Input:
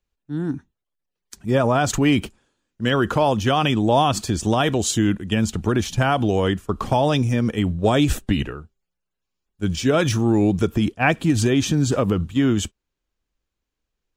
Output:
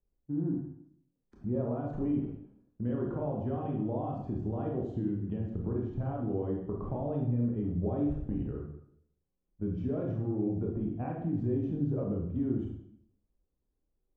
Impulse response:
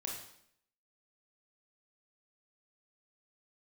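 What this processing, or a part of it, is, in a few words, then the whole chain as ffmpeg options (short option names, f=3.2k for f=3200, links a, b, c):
television next door: -filter_complex "[0:a]acompressor=threshold=-31dB:ratio=5,lowpass=550[a];[1:a]atrim=start_sample=2205[b];[a][b]afir=irnorm=-1:irlink=0,volume=1.5dB"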